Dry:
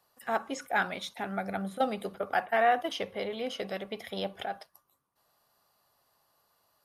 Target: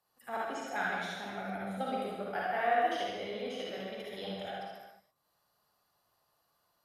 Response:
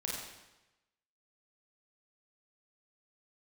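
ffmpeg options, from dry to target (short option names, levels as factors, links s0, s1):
-filter_complex "[1:a]atrim=start_sample=2205,afade=t=out:st=0.38:d=0.01,atrim=end_sample=17199,asetrate=30429,aresample=44100[s0];[0:a][s0]afir=irnorm=-1:irlink=0,volume=0.355"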